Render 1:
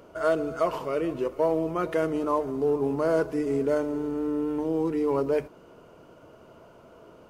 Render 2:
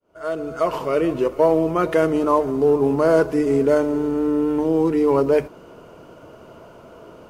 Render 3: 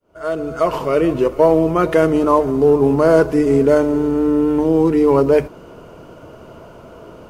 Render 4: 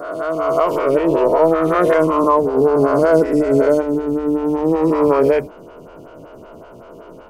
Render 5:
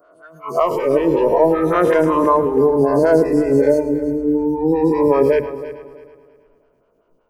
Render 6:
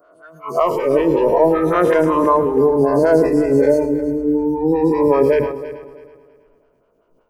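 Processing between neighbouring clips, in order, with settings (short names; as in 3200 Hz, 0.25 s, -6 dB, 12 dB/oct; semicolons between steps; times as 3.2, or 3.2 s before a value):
opening faded in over 0.95 s; gain +8 dB
low shelf 130 Hz +6.5 dB; gain +3.5 dB
spectral swells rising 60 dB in 1.85 s; photocell phaser 5.3 Hz; gain -1 dB
spectral noise reduction 25 dB; multi-head echo 0.108 s, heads first and third, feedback 44%, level -15 dB
sustainer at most 78 dB/s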